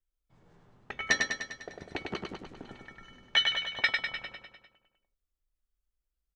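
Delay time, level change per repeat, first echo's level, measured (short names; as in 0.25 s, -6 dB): 0.1 s, -4.5 dB, -4.0 dB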